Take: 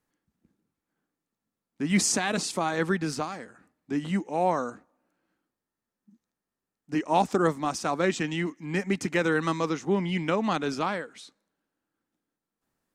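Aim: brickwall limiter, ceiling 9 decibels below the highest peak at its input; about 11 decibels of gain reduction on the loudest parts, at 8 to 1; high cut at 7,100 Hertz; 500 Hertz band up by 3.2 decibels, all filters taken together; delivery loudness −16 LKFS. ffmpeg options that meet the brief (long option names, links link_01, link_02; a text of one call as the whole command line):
ffmpeg -i in.wav -af "lowpass=7100,equalizer=frequency=500:width_type=o:gain=4,acompressor=threshold=-28dB:ratio=8,volume=19.5dB,alimiter=limit=-5dB:level=0:latency=1" out.wav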